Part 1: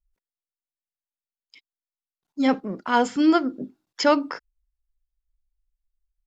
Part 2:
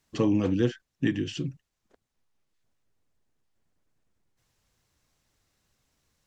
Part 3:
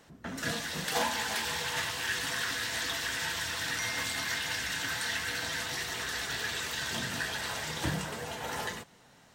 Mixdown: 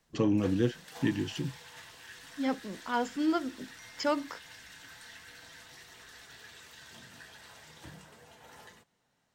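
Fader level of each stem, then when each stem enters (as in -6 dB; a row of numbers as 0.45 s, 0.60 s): -10.5 dB, -3.0 dB, -17.0 dB; 0.00 s, 0.00 s, 0.00 s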